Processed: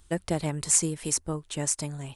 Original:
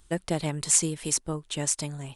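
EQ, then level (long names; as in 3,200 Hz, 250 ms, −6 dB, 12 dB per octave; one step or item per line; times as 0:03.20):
dynamic equaliser 3,400 Hz, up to −6 dB, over −45 dBFS, Q 1.5
parametric band 79 Hz +13 dB 0.21 octaves
0.0 dB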